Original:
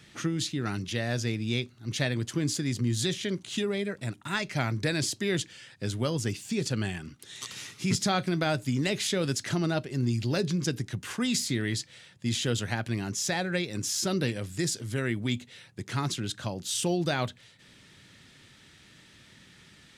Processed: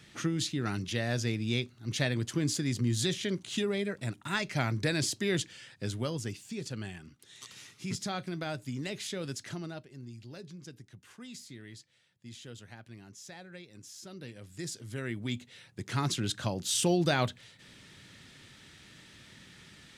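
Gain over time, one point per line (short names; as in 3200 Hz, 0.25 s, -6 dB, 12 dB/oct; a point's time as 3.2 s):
5.68 s -1.5 dB
6.53 s -9 dB
9.44 s -9 dB
10.05 s -18.5 dB
14.13 s -18.5 dB
14.66 s -9.5 dB
16.27 s +1 dB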